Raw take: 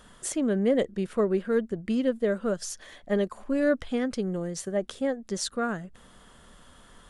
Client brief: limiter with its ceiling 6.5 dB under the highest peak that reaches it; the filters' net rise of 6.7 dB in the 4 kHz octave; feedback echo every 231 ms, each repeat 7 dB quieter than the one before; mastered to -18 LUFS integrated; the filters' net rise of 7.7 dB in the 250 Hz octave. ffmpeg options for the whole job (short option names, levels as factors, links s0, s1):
-af "equalizer=f=250:t=o:g=9,equalizer=f=4000:t=o:g=8.5,alimiter=limit=0.178:level=0:latency=1,aecho=1:1:231|462|693|924|1155:0.447|0.201|0.0905|0.0407|0.0183,volume=2"